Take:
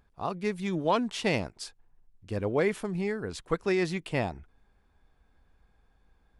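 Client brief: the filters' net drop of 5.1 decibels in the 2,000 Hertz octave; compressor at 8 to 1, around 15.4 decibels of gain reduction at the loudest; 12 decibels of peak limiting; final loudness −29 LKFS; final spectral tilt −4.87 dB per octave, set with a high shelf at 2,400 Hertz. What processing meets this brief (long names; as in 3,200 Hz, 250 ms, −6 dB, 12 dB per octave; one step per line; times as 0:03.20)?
parametric band 2,000 Hz −9 dB
high-shelf EQ 2,400 Hz +5.5 dB
downward compressor 8 to 1, threshold −38 dBFS
level +19.5 dB
brickwall limiter −19.5 dBFS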